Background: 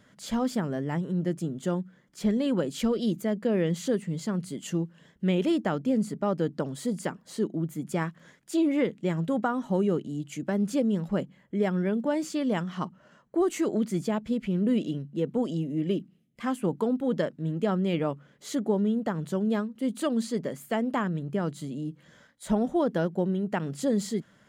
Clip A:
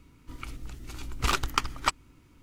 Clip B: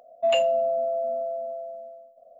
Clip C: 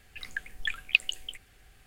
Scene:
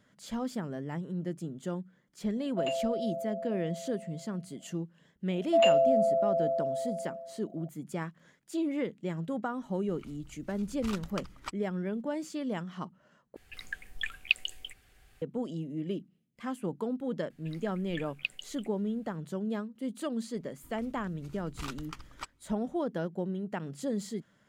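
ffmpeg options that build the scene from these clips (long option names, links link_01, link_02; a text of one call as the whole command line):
ffmpeg -i bed.wav -i cue0.wav -i cue1.wav -i cue2.wav -filter_complex "[2:a]asplit=2[link_01][link_02];[1:a]asplit=2[link_03][link_04];[3:a]asplit=2[link_05][link_06];[0:a]volume=-7dB[link_07];[link_02]aecho=1:1:85:0.0841[link_08];[link_04]alimiter=limit=-9.5dB:level=0:latency=1:release=17[link_09];[link_07]asplit=2[link_10][link_11];[link_10]atrim=end=13.364[link_12];[link_05]atrim=end=1.86,asetpts=PTS-STARTPTS,volume=-3.5dB[link_13];[link_11]atrim=start=15.216[link_14];[link_01]atrim=end=2.39,asetpts=PTS-STARTPTS,volume=-11dB,afade=type=in:duration=0.004:curve=hsin,afade=type=out:start_time=2.386:duration=0.004:curve=hsin,adelay=2340[link_15];[link_08]atrim=end=2.39,asetpts=PTS-STARTPTS,volume=-1.5dB,afade=type=in:duration=0.004:curve=hsin,afade=type=out:start_time=2.386:duration=0.004:curve=hsin,adelay=5300[link_16];[link_03]atrim=end=2.42,asetpts=PTS-STARTPTS,volume=-14.5dB,afade=type=in:duration=0.004:curve=hsin,afade=type=out:start_time=2.416:duration=0.004:curve=hsin,adelay=9600[link_17];[link_06]atrim=end=1.86,asetpts=PTS-STARTPTS,volume=-11.5dB,afade=type=in:duration=0.004:curve=hsin,afade=type=out:start_time=1.856:duration=0.004:curve=hsin,adelay=17300[link_18];[link_09]atrim=end=2.42,asetpts=PTS-STARTPTS,volume=-14.5dB,afade=type=in:duration=0.004:curve=hsin,afade=type=out:start_time=2.416:duration=0.004:curve=hsin,adelay=20350[link_19];[link_12][link_13]acrossfade=duration=0.004:curve1=hsin:curve2=hsin[link_20];[link_20][link_14]acrossfade=duration=0.004:curve1=hsin:curve2=hsin[link_21];[link_21][link_15][link_16][link_17][link_18][link_19]amix=inputs=6:normalize=0" out.wav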